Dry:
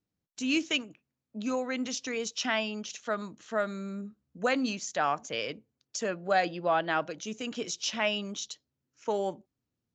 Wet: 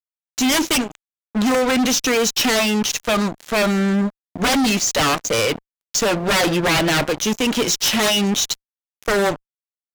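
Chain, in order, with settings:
harmonic generator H 3 −14 dB, 7 −13 dB, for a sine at −13 dBFS
fuzz pedal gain 40 dB, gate −45 dBFS
level −2 dB

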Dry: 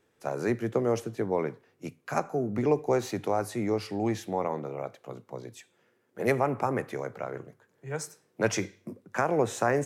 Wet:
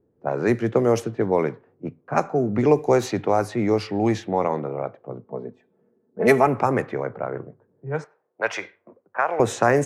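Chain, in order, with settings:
low-pass that shuts in the quiet parts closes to 410 Hz, open at −22.5 dBFS
0:05.24–0:06.47: comb filter 4.6 ms, depth 64%
0:08.04–0:09.40: three-way crossover with the lows and the highs turned down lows −24 dB, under 560 Hz, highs −19 dB, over 3,500 Hz
level +7.5 dB

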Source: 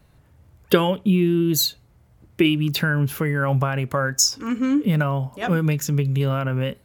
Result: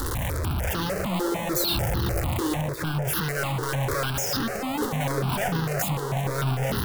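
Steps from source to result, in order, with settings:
sign of each sample alone
0:02.61–0:03.05: high-shelf EQ 2,100 Hz −7.5 dB
feedback echo with a band-pass in the loop 356 ms, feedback 79%, band-pass 520 Hz, level −11.5 dB
power curve on the samples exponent 3
step-sequenced phaser 6.7 Hz 650–2,300 Hz
level +6 dB

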